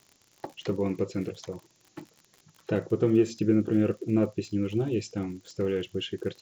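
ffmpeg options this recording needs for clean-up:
-af "adeclick=t=4,afftdn=nr=8:nf=-64"

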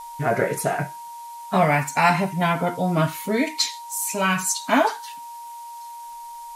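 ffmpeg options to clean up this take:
-af "adeclick=t=4,bandreject=f=940:w=30,afftdn=nr=30:nf=-38"

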